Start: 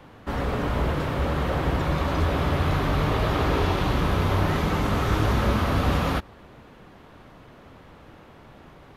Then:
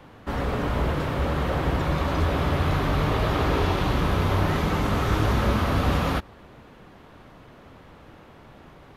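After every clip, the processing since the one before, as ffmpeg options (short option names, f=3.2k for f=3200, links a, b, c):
-af anull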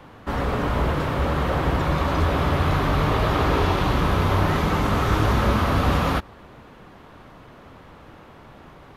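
-af "equalizer=f=1.1k:w=1.5:g=2.5,volume=2dB"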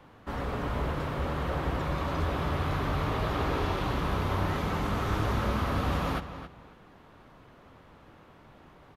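-filter_complex "[0:a]asplit=2[a][b];[b]adelay=271,lowpass=f=4.7k:p=1,volume=-11dB,asplit=2[c][d];[d]adelay=271,lowpass=f=4.7k:p=1,volume=0.22,asplit=2[e][f];[f]adelay=271,lowpass=f=4.7k:p=1,volume=0.22[g];[a][c][e][g]amix=inputs=4:normalize=0,volume=-9dB"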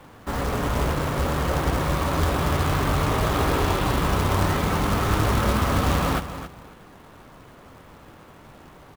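-af "acrusher=bits=3:mode=log:mix=0:aa=0.000001,volume=7dB"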